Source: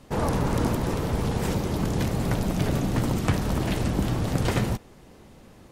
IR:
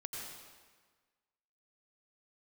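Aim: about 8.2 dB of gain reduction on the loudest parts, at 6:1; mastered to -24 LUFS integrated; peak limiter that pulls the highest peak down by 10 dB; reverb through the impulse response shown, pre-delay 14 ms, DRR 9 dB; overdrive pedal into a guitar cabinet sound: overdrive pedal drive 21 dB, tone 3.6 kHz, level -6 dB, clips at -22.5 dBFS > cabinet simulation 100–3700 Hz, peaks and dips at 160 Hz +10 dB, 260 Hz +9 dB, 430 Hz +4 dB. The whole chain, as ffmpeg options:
-filter_complex "[0:a]acompressor=threshold=0.0398:ratio=6,alimiter=level_in=1.19:limit=0.0631:level=0:latency=1,volume=0.841,asplit=2[s0][s1];[1:a]atrim=start_sample=2205,adelay=14[s2];[s1][s2]afir=irnorm=-1:irlink=0,volume=0.376[s3];[s0][s3]amix=inputs=2:normalize=0,asplit=2[s4][s5];[s5]highpass=f=720:p=1,volume=11.2,asoftclip=type=tanh:threshold=0.075[s6];[s4][s6]amix=inputs=2:normalize=0,lowpass=f=3600:p=1,volume=0.501,highpass=100,equalizer=f=160:t=q:w=4:g=10,equalizer=f=260:t=q:w=4:g=9,equalizer=f=430:t=q:w=4:g=4,lowpass=f=3700:w=0.5412,lowpass=f=3700:w=1.3066,volume=1.68"

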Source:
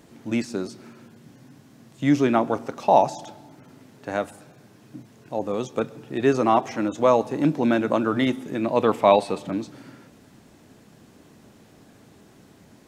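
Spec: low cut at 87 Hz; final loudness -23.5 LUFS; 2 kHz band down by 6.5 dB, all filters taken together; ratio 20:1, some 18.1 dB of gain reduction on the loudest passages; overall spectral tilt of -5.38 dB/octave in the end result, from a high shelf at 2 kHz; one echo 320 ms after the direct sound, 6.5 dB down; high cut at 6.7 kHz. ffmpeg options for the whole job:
-af "highpass=87,lowpass=6700,highshelf=f=2000:g=-6,equalizer=f=2000:t=o:g=-5,acompressor=threshold=0.0282:ratio=20,aecho=1:1:320:0.473,volume=5.01"

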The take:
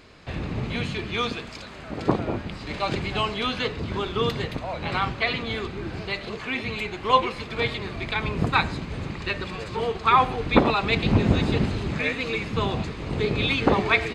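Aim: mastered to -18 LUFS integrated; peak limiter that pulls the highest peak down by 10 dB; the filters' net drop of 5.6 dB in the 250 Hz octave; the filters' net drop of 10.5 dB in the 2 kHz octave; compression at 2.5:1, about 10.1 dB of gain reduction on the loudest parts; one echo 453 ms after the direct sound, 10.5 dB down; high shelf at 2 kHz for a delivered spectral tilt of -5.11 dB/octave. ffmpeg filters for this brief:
-af "equalizer=f=250:t=o:g=-7.5,highshelf=f=2000:g=-8,equalizer=f=2000:t=o:g=-8,acompressor=threshold=0.0282:ratio=2.5,alimiter=level_in=1.41:limit=0.0631:level=0:latency=1,volume=0.708,aecho=1:1:453:0.299,volume=8.91"

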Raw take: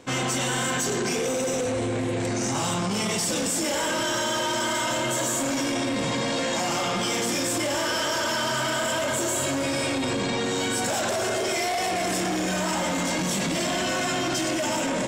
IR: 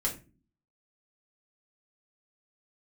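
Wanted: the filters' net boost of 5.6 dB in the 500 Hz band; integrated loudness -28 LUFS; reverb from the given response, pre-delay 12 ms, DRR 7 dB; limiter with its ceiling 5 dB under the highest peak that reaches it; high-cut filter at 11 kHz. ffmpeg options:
-filter_complex "[0:a]lowpass=11000,equalizer=f=500:t=o:g=7,alimiter=limit=0.112:level=0:latency=1,asplit=2[s0][s1];[1:a]atrim=start_sample=2205,adelay=12[s2];[s1][s2]afir=irnorm=-1:irlink=0,volume=0.251[s3];[s0][s3]amix=inputs=2:normalize=0,volume=0.631"

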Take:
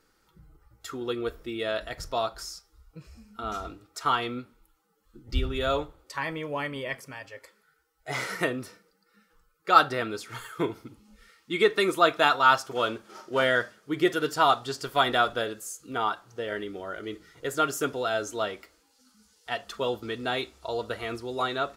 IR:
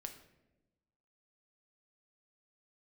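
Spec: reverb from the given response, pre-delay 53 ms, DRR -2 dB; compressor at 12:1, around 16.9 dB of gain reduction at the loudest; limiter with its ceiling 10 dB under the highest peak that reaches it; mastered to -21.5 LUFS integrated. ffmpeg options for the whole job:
-filter_complex "[0:a]acompressor=threshold=0.0355:ratio=12,alimiter=level_in=1.5:limit=0.0631:level=0:latency=1,volume=0.668,asplit=2[s0][s1];[1:a]atrim=start_sample=2205,adelay=53[s2];[s1][s2]afir=irnorm=-1:irlink=0,volume=2[s3];[s0][s3]amix=inputs=2:normalize=0,volume=4.47"

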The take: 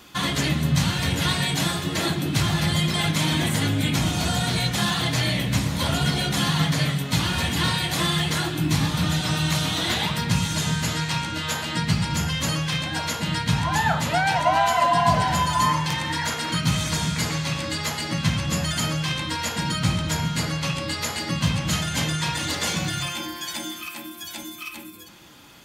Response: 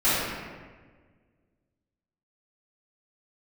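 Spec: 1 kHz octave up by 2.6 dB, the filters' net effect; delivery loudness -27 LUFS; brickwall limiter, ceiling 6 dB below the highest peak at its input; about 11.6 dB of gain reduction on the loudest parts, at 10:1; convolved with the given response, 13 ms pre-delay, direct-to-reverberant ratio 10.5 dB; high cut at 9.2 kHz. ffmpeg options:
-filter_complex "[0:a]lowpass=9200,equalizer=f=1000:t=o:g=3,acompressor=threshold=0.0562:ratio=10,alimiter=limit=0.0944:level=0:latency=1,asplit=2[s0][s1];[1:a]atrim=start_sample=2205,adelay=13[s2];[s1][s2]afir=irnorm=-1:irlink=0,volume=0.0398[s3];[s0][s3]amix=inputs=2:normalize=0,volume=1.33"

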